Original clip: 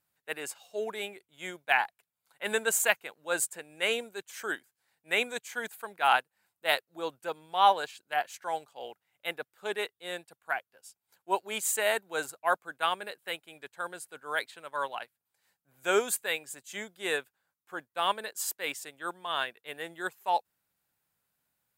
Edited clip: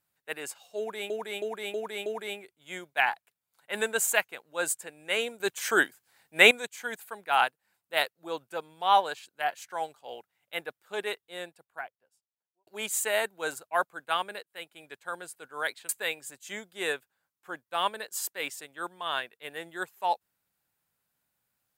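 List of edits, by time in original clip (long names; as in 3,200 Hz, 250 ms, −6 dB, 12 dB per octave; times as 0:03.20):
0:00.78–0:01.10: repeat, 5 plays
0:04.12–0:05.23: clip gain +10.5 dB
0:09.82–0:11.39: fade out and dull
0:13.15–0:13.48: fade in
0:14.61–0:16.13: remove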